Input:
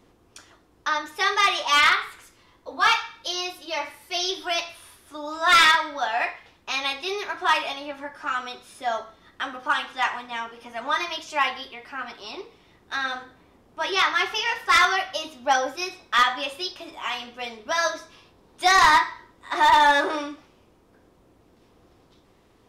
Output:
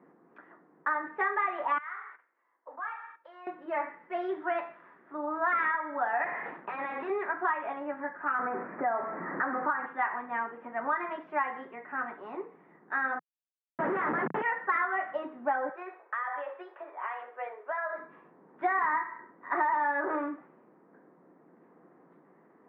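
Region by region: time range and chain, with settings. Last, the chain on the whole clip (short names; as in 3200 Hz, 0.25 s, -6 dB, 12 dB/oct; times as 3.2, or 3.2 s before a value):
1.78–3.47 HPF 680 Hz + compressor 2.5:1, threshold -41 dBFS + gate -48 dBFS, range -13 dB
6.24–7.1 HPF 300 Hz 6 dB/oct + compressor 2:1, threshold -47 dBFS + sample leveller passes 5
8.39–9.86 zero-crossing step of -32.5 dBFS + Butterworth band-stop 3500 Hz, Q 0.98 + three-band squash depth 40%
13.19–14.42 median filter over 5 samples + Schmitt trigger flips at -27 dBFS
15.69–17.98 steep high-pass 420 Hz + compressor 16:1, threshold -27 dBFS + air absorption 98 m
whole clip: Chebyshev band-pass 160–1900 Hz, order 4; compressor 12:1, threshold -25 dBFS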